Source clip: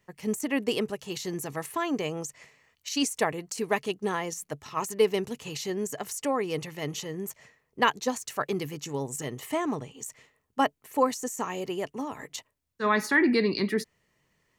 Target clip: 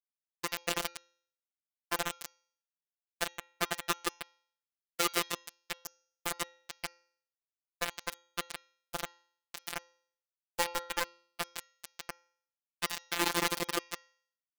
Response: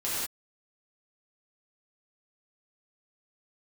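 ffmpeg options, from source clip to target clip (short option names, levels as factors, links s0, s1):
-filter_complex "[0:a]highpass=75,aecho=1:1:7.2:0.78,asplit=2[s0][s1];[s1]adelay=67,lowpass=f=2500:p=1,volume=0.282,asplit=2[s2][s3];[s3]adelay=67,lowpass=f=2500:p=1,volume=0.26,asplit=2[s4][s5];[s5]adelay=67,lowpass=f=2500:p=1,volume=0.26[s6];[s2][s4][s6]amix=inputs=3:normalize=0[s7];[s0][s7]amix=inputs=2:normalize=0,acrossover=split=270|840|2700[s8][s9][s10][s11];[s8]acompressor=threshold=0.0178:ratio=4[s12];[s9]acompressor=threshold=0.0501:ratio=4[s13];[s10]acompressor=threshold=0.0112:ratio=4[s14];[s11]acompressor=threshold=0.00631:ratio=4[s15];[s12][s13][s14][s15]amix=inputs=4:normalize=0,flanger=delay=3.5:depth=6.1:regen=55:speed=0.85:shape=triangular,asplit=2[s16][s17];[s17]aecho=0:1:160|304|433.6|550.2|655.2:0.631|0.398|0.251|0.158|0.1[s18];[s16][s18]amix=inputs=2:normalize=0,acrusher=bits=3:mix=0:aa=0.000001,lowshelf=f=450:g=-8,bandreject=f=272.2:t=h:w=4,bandreject=f=544.4:t=h:w=4,bandreject=f=816.6:t=h:w=4,bandreject=f=1088.8:t=h:w=4,bandreject=f=1361:t=h:w=4,bandreject=f=1633.2:t=h:w=4,bandreject=f=1905.4:t=h:w=4,bandreject=f=2177.6:t=h:w=4,bandreject=f=2449.8:t=h:w=4,bandreject=f=2722:t=h:w=4,bandreject=f=2994.2:t=h:w=4,bandreject=f=3266.4:t=h:w=4,bandreject=f=3538.6:t=h:w=4,bandreject=f=3810.8:t=h:w=4,bandreject=f=4083:t=h:w=4,bandreject=f=4355.2:t=h:w=4,bandreject=f=4627.4:t=h:w=4,bandreject=f=4899.6:t=h:w=4,bandreject=f=5171.8:t=h:w=4,bandreject=f=5444:t=h:w=4,bandreject=f=5716.2:t=h:w=4,bandreject=f=5988.4:t=h:w=4,bandreject=f=6260.6:t=h:w=4,bandreject=f=6532.8:t=h:w=4,bandreject=f=6805:t=h:w=4,afftfilt=real='hypot(re,im)*cos(PI*b)':imag='0':win_size=1024:overlap=0.75,volume=1.58"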